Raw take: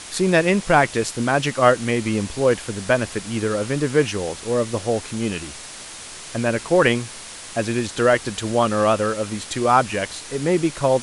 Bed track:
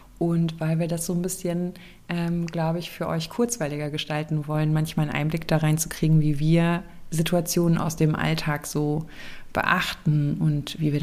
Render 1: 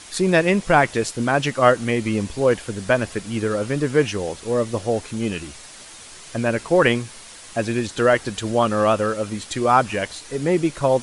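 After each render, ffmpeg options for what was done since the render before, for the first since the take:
ffmpeg -i in.wav -af "afftdn=noise_reduction=6:noise_floor=-37" out.wav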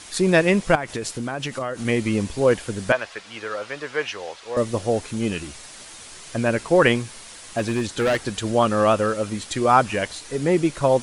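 ffmpeg -i in.wav -filter_complex "[0:a]asettb=1/sr,asplit=3[link_01][link_02][link_03];[link_01]atrim=end=0.754[link_04];[link_02]atrim=start=0.75:end=1.85,asetpts=PTS-STARTPTS,afade=type=in:duration=0.004:curve=qsin,afade=type=out:start_time=1.096:duration=0.004:curve=qsin,acompressor=threshold=-23dB:ratio=12:attack=3.2:release=140:knee=1:detection=peak[link_05];[link_03]atrim=start=1.846[link_06];[link_04][link_05]acrossfade=duration=0.004:curve1=hsin:curve2=qsin[link_07];[link_07][link_06]acrossfade=duration=0.004:curve1=qsin:curve2=hsin,asettb=1/sr,asplit=3[link_08][link_09][link_10];[link_08]atrim=end=2.924[link_11];[link_09]atrim=start=2.92:end=4.57,asetpts=PTS-STARTPTS,afade=type=in:duration=0.004:curve=qsin,afade=type=out:start_time=1.646:duration=0.004:curve=qsin,acrossover=split=560 5600:gain=0.0891 1 0.158[link_12][link_13][link_14];[link_12][link_13][link_14]amix=inputs=3:normalize=0[link_15];[link_10]atrim=start=4.566[link_16];[link_11][link_15]acrossfade=duration=0.004:curve1=hsin:curve2=qsin[link_17];[link_17][link_16]acrossfade=duration=0.004:curve1=qsin:curve2=hsin,asettb=1/sr,asplit=3[link_18][link_19][link_20];[link_18]atrim=end=6.964[link_21];[link_19]atrim=start=6.96:end=8.17,asetpts=PTS-STARTPTS,afade=type=in:duration=0.004:curve=qsin,afade=type=out:start_time=1.206:duration=0.004:curve=qsin,asoftclip=type=hard:threshold=-17dB[link_22];[link_20]atrim=start=8.166[link_23];[link_21][link_22]acrossfade=duration=0.004:curve1=hsin:curve2=qsin[link_24];[link_24][link_23]acrossfade=duration=0.004:curve1=qsin:curve2=hsin" out.wav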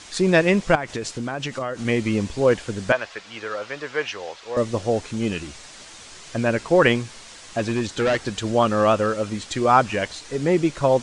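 ffmpeg -i in.wav -af "lowpass=frequency=7900:width=0.5412,lowpass=frequency=7900:width=1.3066" out.wav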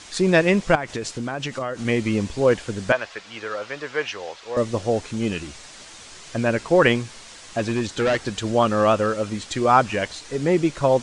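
ffmpeg -i in.wav -af anull out.wav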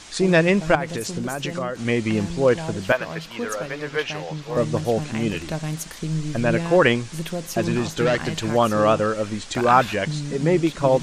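ffmpeg -i in.wav -i bed.wav -filter_complex "[1:a]volume=-6.5dB[link_01];[0:a][link_01]amix=inputs=2:normalize=0" out.wav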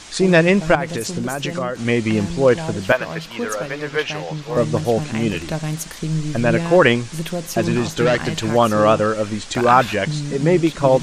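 ffmpeg -i in.wav -af "volume=3.5dB,alimiter=limit=-1dB:level=0:latency=1" out.wav

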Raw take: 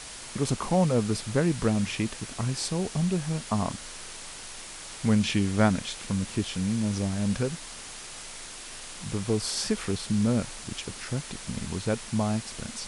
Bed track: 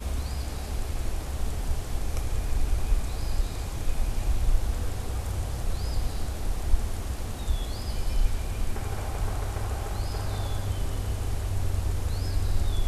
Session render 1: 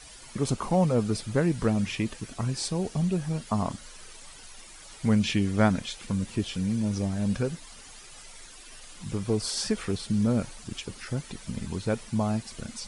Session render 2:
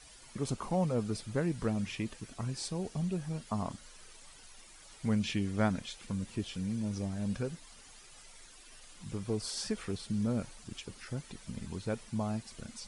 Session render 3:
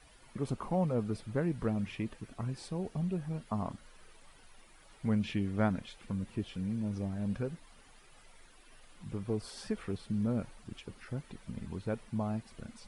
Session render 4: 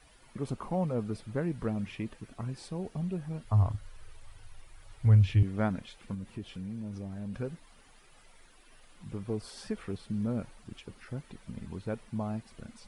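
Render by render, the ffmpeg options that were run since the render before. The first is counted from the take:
ffmpeg -i in.wav -af "afftdn=noise_reduction=11:noise_floor=-42" out.wav
ffmpeg -i in.wav -af "volume=-7.5dB" out.wav
ffmpeg -i in.wav -af "equalizer=frequency=6600:width_type=o:width=1.7:gain=-12.5" out.wav
ffmpeg -i in.wav -filter_complex "[0:a]asettb=1/sr,asplit=3[link_01][link_02][link_03];[link_01]atrim=end=3.454[link_04];[link_02]atrim=start=3.45:end=5.43,asetpts=PTS-STARTPTS,afade=type=in:duration=0.004:curve=qsin,afade=type=out:start_time=1.976:duration=0.004:curve=qsin,lowshelf=frequency=140:width_type=q:width=3:gain=10.5[link_05];[link_03]atrim=start=5.426[link_06];[link_04][link_05]acrossfade=duration=0.004:curve1=hsin:curve2=qsin[link_07];[link_07][link_06]acrossfade=duration=0.004:curve1=qsin:curve2=hsin,asettb=1/sr,asplit=3[link_08][link_09][link_10];[link_08]atrim=end=6.144[link_11];[link_09]atrim=start=6.14:end=7.34,asetpts=PTS-STARTPTS,afade=type=in:duration=0.004:curve=qsin,afade=type=out:start_time=1.196:duration=0.004:curve=qsin,acompressor=threshold=-37dB:ratio=2:attack=3.2:release=140:knee=1:detection=peak[link_12];[link_10]atrim=start=7.336[link_13];[link_11][link_12]acrossfade=duration=0.004:curve1=hsin:curve2=qsin[link_14];[link_14][link_13]acrossfade=duration=0.004:curve1=qsin:curve2=hsin" out.wav

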